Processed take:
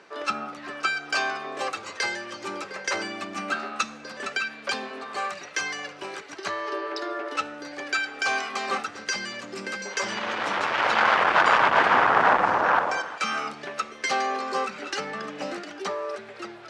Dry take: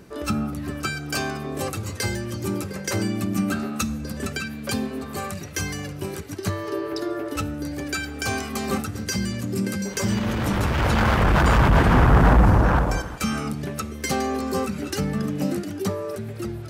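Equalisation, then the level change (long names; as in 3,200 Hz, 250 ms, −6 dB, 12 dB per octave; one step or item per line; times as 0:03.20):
band-pass filter 760–7,700 Hz
high-frequency loss of the air 78 metres
high-shelf EQ 5,000 Hz −4.5 dB
+5.5 dB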